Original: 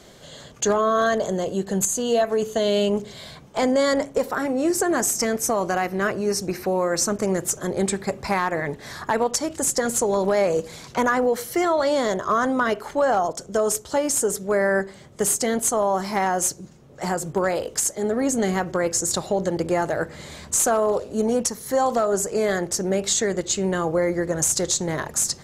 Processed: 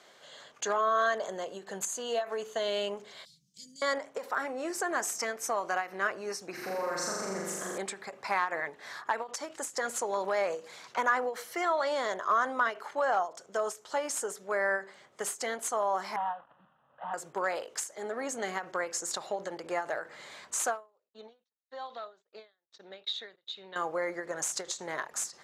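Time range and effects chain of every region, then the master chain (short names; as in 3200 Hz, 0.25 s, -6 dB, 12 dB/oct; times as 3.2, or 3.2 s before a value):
3.25–3.82 Chebyshev band-stop 180–5000 Hz, order 3 + comb 6.1 ms, depth 34%
6.53–7.78 bell 170 Hz +9.5 dB 1.8 oct + compressor 2.5:1, threshold -25 dBFS + flutter echo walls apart 7.1 m, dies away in 1.5 s
16.16–17.14 CVSD 16 kbps + fixed phaser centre 930 Hz, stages 4
21.09–23.76 ladder low-pass 3900 Hz, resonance 85% + gate -42 dBFS, range -52 dB
whole clip: HPF 1200 Hz 12 dB/oct; tilt -4 dB/oct; ending taper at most 210 dB/s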